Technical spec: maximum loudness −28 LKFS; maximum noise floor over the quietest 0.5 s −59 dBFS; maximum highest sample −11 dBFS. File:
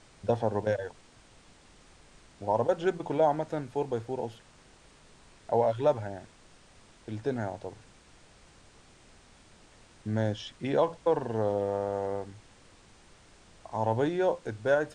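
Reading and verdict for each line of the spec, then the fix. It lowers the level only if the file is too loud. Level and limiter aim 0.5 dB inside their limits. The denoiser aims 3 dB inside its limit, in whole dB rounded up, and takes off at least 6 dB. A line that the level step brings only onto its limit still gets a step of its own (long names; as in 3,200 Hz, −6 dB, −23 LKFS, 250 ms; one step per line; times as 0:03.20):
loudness −30.5 LKFS: in spec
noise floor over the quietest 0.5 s −57 dBFS: out of spec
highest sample −13.0 dBFS: in spec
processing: broadband denoise 6 dB, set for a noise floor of −57 dBFS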